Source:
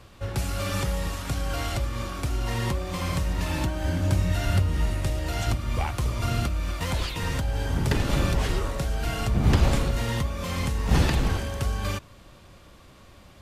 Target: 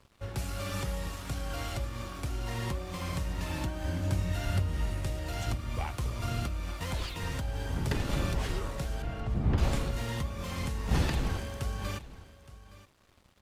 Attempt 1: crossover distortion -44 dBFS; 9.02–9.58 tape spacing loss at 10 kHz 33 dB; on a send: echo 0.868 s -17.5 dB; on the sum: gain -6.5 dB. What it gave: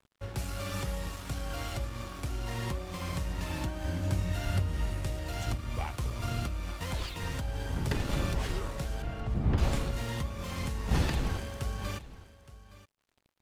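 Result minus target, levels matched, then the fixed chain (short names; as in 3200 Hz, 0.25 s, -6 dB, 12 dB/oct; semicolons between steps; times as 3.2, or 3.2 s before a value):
crossover distortion: distortion +7 dB
crossover distortion -51 dBFS; 9.02–9.58 tape spacing loss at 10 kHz 33 dB; on a send: echo 0.868 s -17.5 dB; on the sum: gain -6.5 dB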